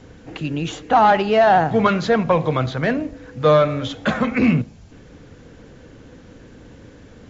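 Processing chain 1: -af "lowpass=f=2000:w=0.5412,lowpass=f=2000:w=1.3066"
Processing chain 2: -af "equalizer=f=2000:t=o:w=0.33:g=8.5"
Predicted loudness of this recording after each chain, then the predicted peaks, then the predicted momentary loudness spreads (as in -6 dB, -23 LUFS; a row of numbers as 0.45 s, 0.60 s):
-18.5 LUFS, -17.5 LUFS; -5.0 dBFS, -4.0 dBFS; 12 LU, 13 LU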